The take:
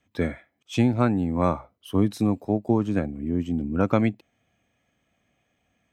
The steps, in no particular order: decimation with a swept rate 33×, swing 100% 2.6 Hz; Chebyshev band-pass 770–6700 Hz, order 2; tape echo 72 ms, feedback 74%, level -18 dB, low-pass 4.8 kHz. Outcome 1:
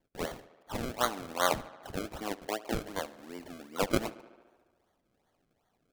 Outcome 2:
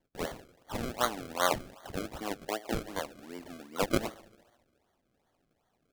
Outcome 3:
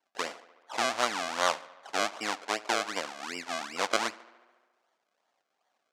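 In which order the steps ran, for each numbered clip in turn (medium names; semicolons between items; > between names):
Chebyshev band-pass > decimation with a swept rate > tape echo; tape echo > Chebyshev band-pass > decimation with a swept rate; decimation with a swept rate > tape echo > Chebyshev band-pass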